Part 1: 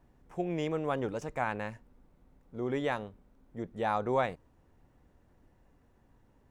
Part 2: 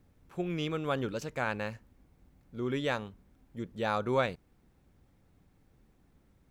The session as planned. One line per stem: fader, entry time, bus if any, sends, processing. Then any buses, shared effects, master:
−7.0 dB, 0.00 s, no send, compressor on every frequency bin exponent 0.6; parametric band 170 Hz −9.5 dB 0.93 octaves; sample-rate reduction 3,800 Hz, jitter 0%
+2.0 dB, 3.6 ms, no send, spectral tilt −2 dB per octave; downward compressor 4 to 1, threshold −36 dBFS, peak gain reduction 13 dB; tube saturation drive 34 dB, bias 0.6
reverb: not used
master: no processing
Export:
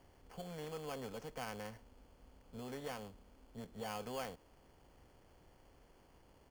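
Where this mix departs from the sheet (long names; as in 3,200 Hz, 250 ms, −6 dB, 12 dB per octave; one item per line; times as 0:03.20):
stem 1 −7.0 dB → −16.5 dB
stem 2 +2.0 dB → −7.5 dB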